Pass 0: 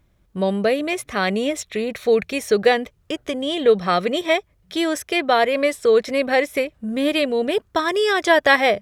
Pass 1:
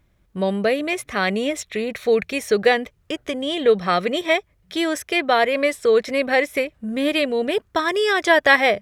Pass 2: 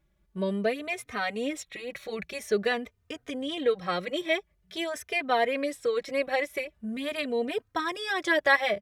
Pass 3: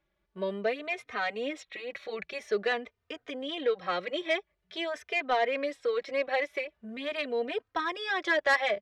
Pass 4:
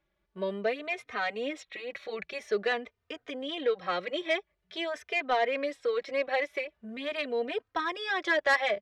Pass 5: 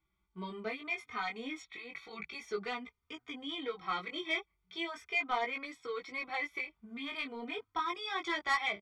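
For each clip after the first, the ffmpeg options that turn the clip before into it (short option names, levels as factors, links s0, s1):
-af "equalizer=f=2000:w=1.6:g=3,volume=0.891"
-filter_complex "[0:a]asplit=2[s0][s1];[s1]adelay=3.1,afreqshift=0.47[s2];[s0][s2]amix=inputs=2:normalize=1,volume=0.501"
-filter_complex "[0:a]acrossover=split=320 5200:gain=0.251 1 0.0794[s0][s1][s2];[s0][s1][s2]amix=inputs=3:normalize=0,asoftclip=type=tanh:threshold=0.133"
-af anull
-af "aecho=1:1:0.9:0.9,flanger=delay=15.5:depth=6.7:speed=0.34,volume=0.668"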